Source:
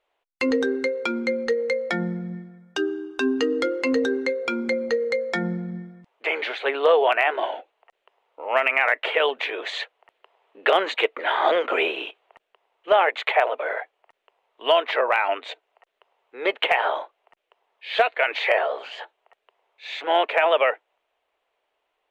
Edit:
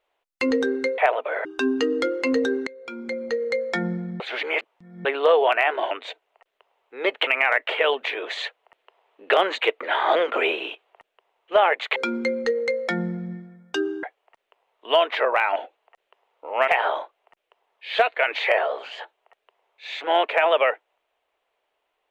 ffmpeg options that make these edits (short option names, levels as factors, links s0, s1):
-filter_complex "[0:a]asplit=12[s0][s1][s2][s3][s4][s5][s6][s7][s8][s9][s10][s11];[s0]atrim=end=0.982[s12];[s1]atrim=start=13.318:end=13.792[s13];[s2]atrim=start=3.048:end=4.27,asetpts=PTS-STARTPTS,afade=t=out:st=1.218:d=0.004:c=hsin:silence=0.0794328[s14];[s3]atrim=start=4.27:end=5.802,asetpts=PTS-STARTPTS,afade=t=in:d=0.93:silence=0.0794328[s15];[s4]atrim=start=5.798:end=6.652,asetpts=PTS-STARTPTS,areverse[s16];[s5]atrim=start=6.648:end=7.512[s17];[s6]atrim=start=15.318:end=16.682[s18];[s7]atrim=start=8.628:end=13.322[s19];[s8]atrim=start=0.978:end=3.052[s20];[s9]atrim=start=13.788:end=15.322[s21];[s10]atrim=start=7.508:end=8.632[s22];[s11]atrim=start=16.678[s23];[s12][s13]acrossfade=d=0.004:c1=hsin:c2=hsin[s24];[s14][s15]concat=n=2:v=0:a=1[s25];[s24][s25]acrossfade=d=0.004:c1=hsin:c2=hsin[s26];[s26][s16]acrossfade=d=0.004:c1=hsin:c2=hsin[s27];[s27][s17]acrossfade=d=0.004:c1=hsin:c2=hsin[s28];[s28][s18]acrossfade=d=0.004:c1=hsin:c2=hsin[s29];[s29][s19]acrossfade=d=0.004:c1=hsin:c2=hsin[s30];[s30][s20]acrossfade=d=0.004:c1=hsin:c2=hsin[s31];[s31][s21]acrossfade=d=0.004:c1=hsin:c2=hsin[s32];[s32][s22]acrossfade=d=0.004:c1=hsin:c2=hsin[s33];[s33][s23]acrossfade=d=0.004:c1=hsin:c2=hsin"